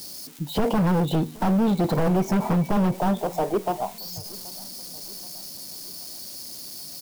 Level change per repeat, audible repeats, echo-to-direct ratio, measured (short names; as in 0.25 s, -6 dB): -5.5 dB, 3, -21.5 dB